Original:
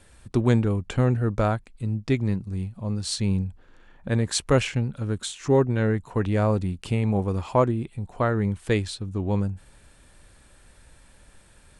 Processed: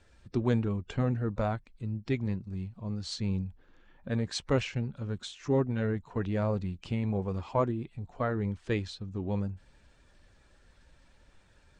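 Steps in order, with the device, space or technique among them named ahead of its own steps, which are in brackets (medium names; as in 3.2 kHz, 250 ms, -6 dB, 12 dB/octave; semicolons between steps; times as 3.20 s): clip after many re-uploads (low-pass 6.5 kHz 24 dB/octave; coarse spectral quantiser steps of 15 dB); trim -7 dB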